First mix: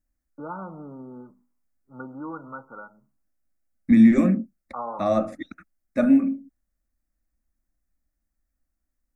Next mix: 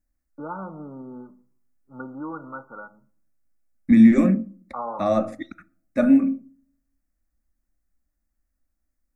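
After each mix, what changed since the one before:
reverb: on, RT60 0.50 s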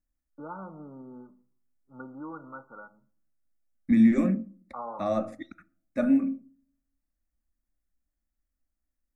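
first voice −6.5 dB
second voice −6.5 dB

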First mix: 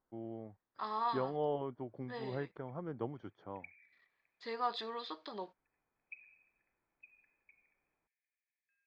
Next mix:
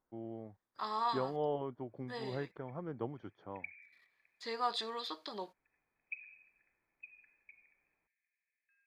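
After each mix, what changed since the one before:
second voice: remove high-frequency loss of the air 170 metres
background +7.0 dB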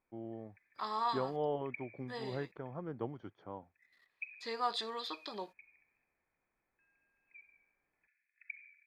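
background: entry −1.90 s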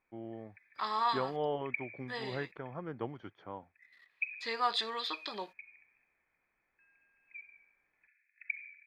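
master: add parametric band 2,300 Hz +8.5 dB 1.9 octaves

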